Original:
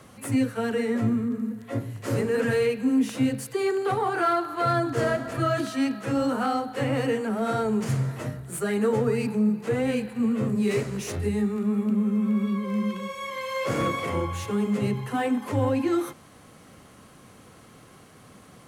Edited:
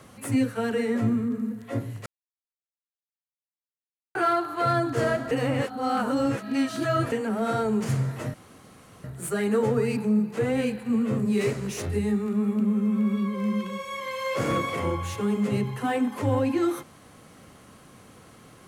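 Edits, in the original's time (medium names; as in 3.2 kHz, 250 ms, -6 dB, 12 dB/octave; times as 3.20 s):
2.06–4.15 s: mute
5.31–7.12 s: reverse
8.34 s: insert room tone 0.70 s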